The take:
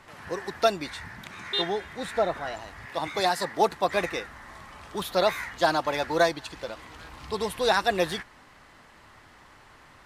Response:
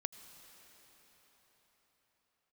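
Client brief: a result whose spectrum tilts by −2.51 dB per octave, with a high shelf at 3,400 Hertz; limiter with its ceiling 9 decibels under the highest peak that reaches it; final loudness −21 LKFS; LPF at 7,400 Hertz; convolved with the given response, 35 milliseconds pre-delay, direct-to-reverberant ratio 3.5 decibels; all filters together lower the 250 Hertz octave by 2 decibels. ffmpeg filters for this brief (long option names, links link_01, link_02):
-filter_complex "[0:a]lowpass=7400,equalizer=frequency=250:width_type=o:gain=-3,highshelf=frequency=3400:gain=-9,alimiter=limit=-19dB:level=0:latency=1,asplit=2[link_01][link_02];[1:a]atrim=start_sample=2205,adelay=35[link_03];[link_02][link_03]afir=irnorm=-1:irlink=0,volume=-2dB[link_04];[link_01][link_04]amix=inputs=2:normalize=0,volume=10dB"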